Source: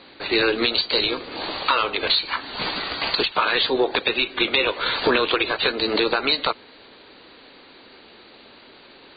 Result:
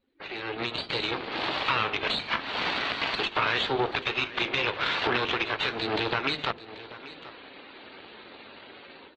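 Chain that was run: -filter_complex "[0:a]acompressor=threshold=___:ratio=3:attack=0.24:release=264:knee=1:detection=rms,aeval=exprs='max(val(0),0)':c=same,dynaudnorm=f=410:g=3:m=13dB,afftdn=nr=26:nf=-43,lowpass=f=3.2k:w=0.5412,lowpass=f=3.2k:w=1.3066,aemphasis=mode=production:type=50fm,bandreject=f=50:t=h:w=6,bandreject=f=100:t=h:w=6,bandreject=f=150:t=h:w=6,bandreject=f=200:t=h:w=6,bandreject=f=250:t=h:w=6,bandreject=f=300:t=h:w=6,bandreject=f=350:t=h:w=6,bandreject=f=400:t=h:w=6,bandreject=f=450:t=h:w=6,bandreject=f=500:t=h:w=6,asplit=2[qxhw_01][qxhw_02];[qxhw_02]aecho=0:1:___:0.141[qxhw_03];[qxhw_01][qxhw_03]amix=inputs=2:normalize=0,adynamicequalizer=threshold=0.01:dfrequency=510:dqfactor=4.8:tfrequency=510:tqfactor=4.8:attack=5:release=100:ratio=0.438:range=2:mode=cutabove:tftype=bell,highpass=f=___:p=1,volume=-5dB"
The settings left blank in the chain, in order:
-22dB, 785, 140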